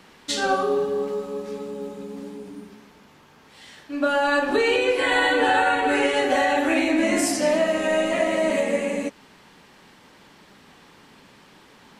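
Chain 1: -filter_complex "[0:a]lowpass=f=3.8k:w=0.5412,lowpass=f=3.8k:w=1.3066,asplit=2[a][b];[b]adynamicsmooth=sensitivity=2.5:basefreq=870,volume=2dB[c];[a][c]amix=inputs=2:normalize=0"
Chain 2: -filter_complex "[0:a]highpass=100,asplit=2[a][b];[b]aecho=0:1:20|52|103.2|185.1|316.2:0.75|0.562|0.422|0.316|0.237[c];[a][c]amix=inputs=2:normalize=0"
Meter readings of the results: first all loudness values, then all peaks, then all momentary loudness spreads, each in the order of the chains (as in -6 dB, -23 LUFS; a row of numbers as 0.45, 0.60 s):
-15.5, -18.5 LUFS; -1.5, -4.0 dBFS; 15, 18 LU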